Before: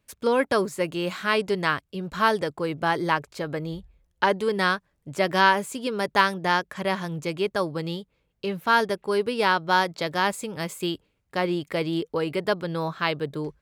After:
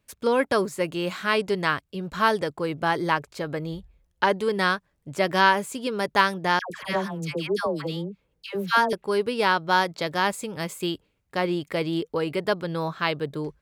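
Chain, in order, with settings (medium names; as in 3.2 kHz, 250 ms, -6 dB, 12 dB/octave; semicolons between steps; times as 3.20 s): 6.59–8.93 s: phase dispersion lows, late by 115 ms, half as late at 930 Hz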